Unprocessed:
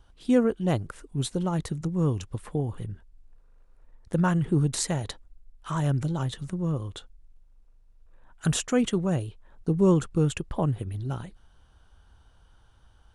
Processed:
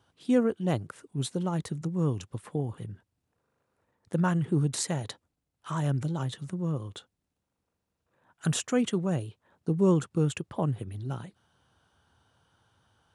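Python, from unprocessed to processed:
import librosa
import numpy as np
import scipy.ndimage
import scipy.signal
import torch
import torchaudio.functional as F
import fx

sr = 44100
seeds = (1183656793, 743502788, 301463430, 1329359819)

y = scipy.signal.sosfilt(scipy.signal.butter(4, 99.0, 'highpass', fs=sr, output='sos'), x)
y = F.gain(torch.from_numpy(y), -2.5).numpy()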